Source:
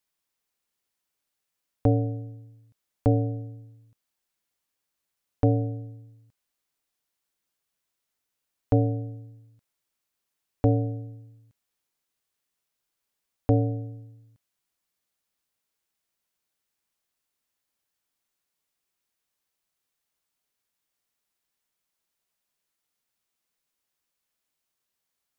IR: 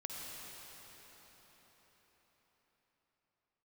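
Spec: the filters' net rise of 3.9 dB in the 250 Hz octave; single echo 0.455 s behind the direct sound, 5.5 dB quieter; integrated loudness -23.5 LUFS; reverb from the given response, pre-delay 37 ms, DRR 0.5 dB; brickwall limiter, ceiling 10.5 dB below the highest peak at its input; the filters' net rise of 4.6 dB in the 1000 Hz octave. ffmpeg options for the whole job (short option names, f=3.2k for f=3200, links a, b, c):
-filter_complex "[0:a]equalizer=f=250:t=o:g=4,equalizer=f=1k:t=o:g=7.5,alimiter=limit=-16.5dB:level=0:latency=1,aecho=1:1:455:0.531,asplit=2[a][b];[1:a]atrim=start_sample=2205,adelay=37[c];[b][c]afir=irnorm=-1:irlink=0,volume=-0.5dB[d];[a][d]amix=inputs=2:normalize=0,volume=7.5dB"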